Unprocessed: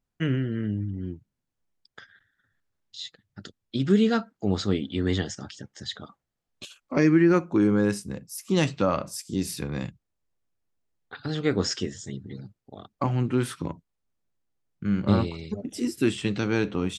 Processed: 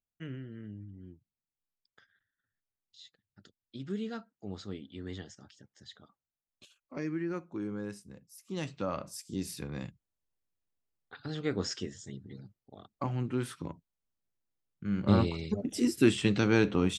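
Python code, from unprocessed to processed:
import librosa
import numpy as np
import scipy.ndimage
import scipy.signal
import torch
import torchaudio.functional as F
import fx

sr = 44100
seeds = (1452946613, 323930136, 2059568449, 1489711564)

y = fx.gain(x, sr, db=fx.line((8.42, -16.0), (9.09, -8.0), (14.86, -8.0), (15.29, 0.0)))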